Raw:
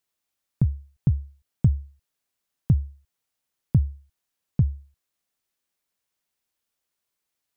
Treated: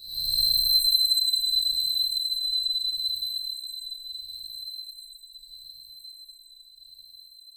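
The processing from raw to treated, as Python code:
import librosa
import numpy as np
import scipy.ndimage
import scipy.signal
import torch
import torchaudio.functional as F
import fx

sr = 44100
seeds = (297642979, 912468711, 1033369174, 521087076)

y = fx.band_swap(x, sr, width_hz=4000)
y = fx.tube_stage(y, sr, drive_db=19.0, bias=0.35)
y = fx.low_shelf(y, sr, hz=110.0, db=-9.0)
y = fx.fixed_phaser(y, sr, hz=730.0, stages=4)
y = fx.echo_feedback(y, sr, ms=69, feedback_pct=57, wet_db=-10.5)
y = fx.paulstretch(y, sr, seeds[0], factor=19.0, window_s=0.05, from_s=2.68)
y = fx.rev_plate(y, sr, seeds[1], rt60_s=0.54, hf_ratio=0.35, predelay_ms=85, drr_db=-1.0)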